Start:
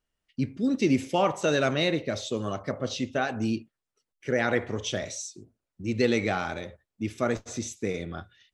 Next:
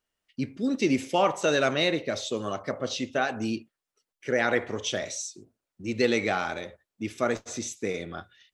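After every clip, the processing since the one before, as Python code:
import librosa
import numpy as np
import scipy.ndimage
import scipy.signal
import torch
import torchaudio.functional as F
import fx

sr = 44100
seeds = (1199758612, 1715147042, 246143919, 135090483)

y = fx.low_shelf(x, sr, hz=180.0, db=-11.0)
y = F.gain(torch.from_numpy(y), 2.0).numpy()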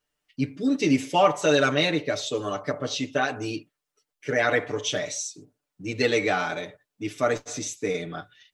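y = x + 0.93 * np.pad(x, (int(6.8 * sr / 1000.0), 0))[:len(x)]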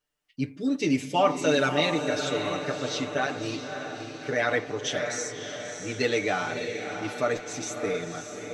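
y = fx.echo_diffused(x, sr, ms=611, feedback_pct=52, wet_db=-7.0)
y = F.gain(torch.from_numpy(y), -3.0).numpy()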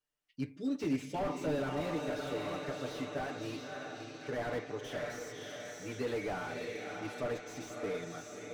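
y = fx.slew_limit(x, sr, full_power_hz=40.0)
y = F.gain(torch.from_numpy(y), -8.0).numpy()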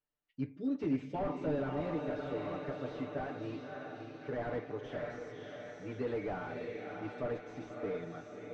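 y = fx.spacing_loss(x, sr, db_at_10k=30)
y = F.gain(torch.from_numpy(y), 1.0).numpy()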